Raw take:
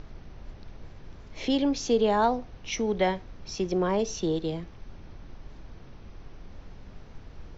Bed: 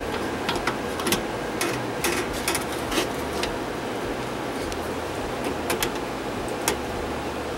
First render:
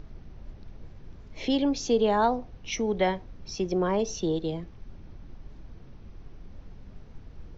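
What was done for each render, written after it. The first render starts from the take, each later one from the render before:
broadband denoise 6 dB, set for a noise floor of −47 dBFS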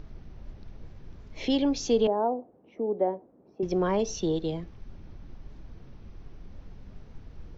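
0:02.07–0:03.63: flat-topped band-pass 440 Hz, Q 0.87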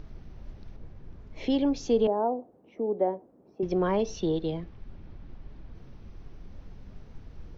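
0:00.76–0:02.40: high-shelf EQ 2,700 Hz −9 dB
0:03.62–0:05.75: low-pass filter 4,300 Hz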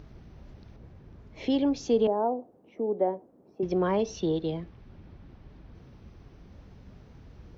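high-pass filter 51 Hz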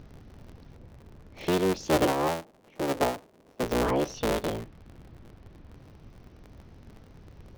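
sub-harmonics by changed cycles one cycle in 3, inverted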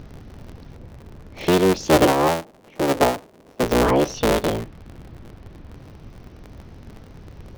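level +8.5 dB

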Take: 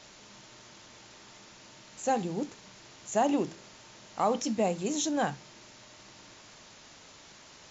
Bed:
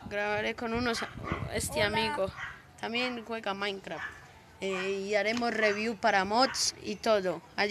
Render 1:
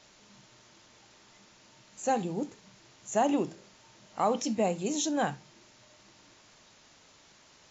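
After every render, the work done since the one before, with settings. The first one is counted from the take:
noise reduction from a noise print 6 dB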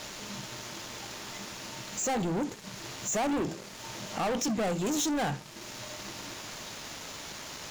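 downward compressor 1.5 to 1, threshold −55 dBFS, peak gain reduction 11.5 dB
leveller curve on the samples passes 5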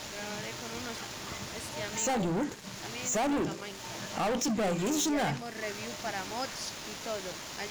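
mix in bed −11 dB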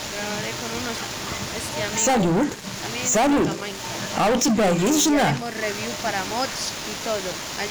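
level +10.5 dB

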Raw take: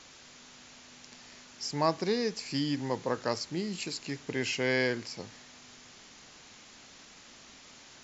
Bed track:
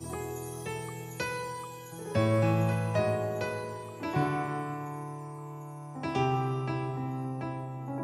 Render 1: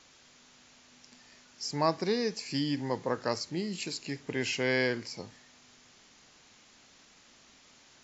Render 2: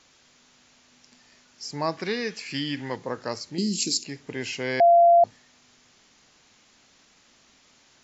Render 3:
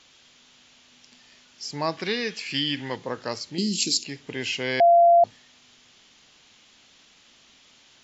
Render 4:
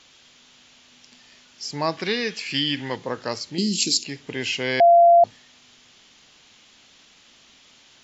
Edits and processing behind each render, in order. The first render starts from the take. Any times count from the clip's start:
noise reduction from a noise print 6 dB
0:01.97–0:02.96: flat-topped bell 2,100 Hz +8.5 dB; 0:03.58–0:04.04: drawn EQ curve 130 Hz 0 dB, 230 Hz +12 dB, 340 Hz +8 dB, 990 Hz −19 dB, 3,600 Hz +7 dB, 5,400 Hz +15 dB; 0:04.80–0:05.24: beep over 687 Hz −12 dBFS
parametric band 3,200 Hz +8 dB 0.78 octaves
level +2.5 dB

